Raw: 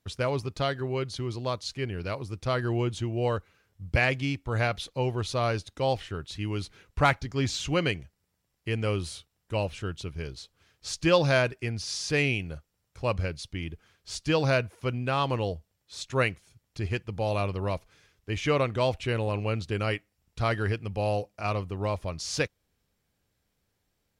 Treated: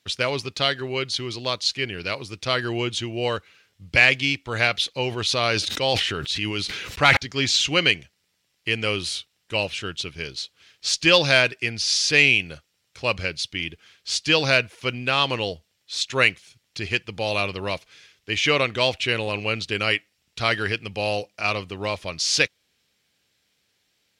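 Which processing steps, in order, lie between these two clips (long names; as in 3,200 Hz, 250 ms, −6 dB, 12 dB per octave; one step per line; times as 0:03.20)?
meter weighting curve D
soft clipping −2.5 dBFS, distortion −27 dB
0:05.09–0:07.17: level that may fall only so fast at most 30 dB per second
level +3 dB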